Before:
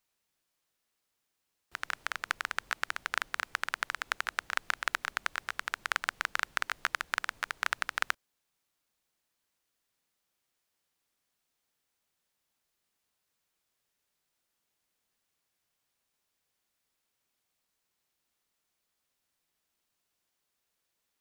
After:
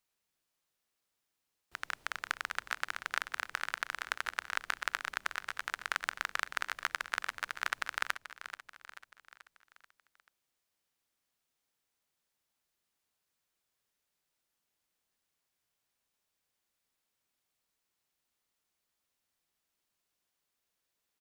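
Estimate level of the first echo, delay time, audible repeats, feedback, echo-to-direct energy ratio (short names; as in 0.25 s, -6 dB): -12.0 dB, 0.435 s, 4, 51%, -10.5 dB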